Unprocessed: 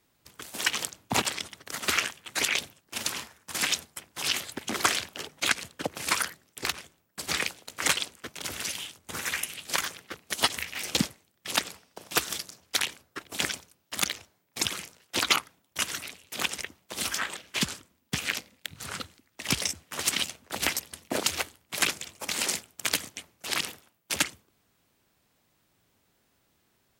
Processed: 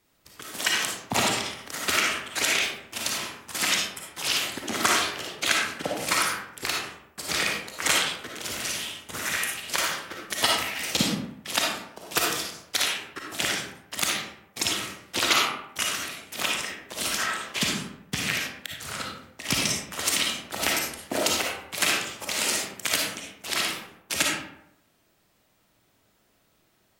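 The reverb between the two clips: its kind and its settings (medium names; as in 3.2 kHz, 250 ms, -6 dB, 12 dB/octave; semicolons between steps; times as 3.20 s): algorithmic reverb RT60 0.79 s, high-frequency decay 0.55×, pre-delay 15 ms, DRR -2.5 dB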